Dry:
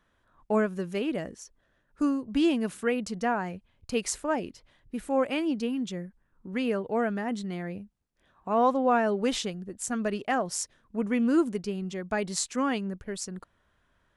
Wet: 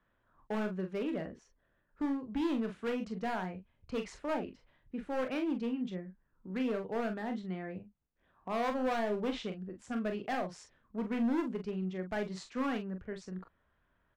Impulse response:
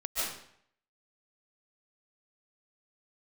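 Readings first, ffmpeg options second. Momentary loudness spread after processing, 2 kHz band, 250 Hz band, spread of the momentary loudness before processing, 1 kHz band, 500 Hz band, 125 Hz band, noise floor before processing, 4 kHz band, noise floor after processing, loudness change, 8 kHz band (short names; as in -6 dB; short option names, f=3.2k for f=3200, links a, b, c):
12 LU, -7.5 dB, -6.5 dB, 14 LU, -8.5 dB, -7.5 dB, -4.5 dB, -71 dBFS, -10.0 dB, -76 dBFS, -7.5 dB, under -20 dB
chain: -filter_complex "[0:a]lowpass=2.6k,acrossover=split=140[a][b];[b]asoftclip=type=hard:threshold=-25dB[c];[a][c]amix=inputs=2:normalize=0,aecho=1:1:27|43:0.251|0.398,volume=-5.5dB"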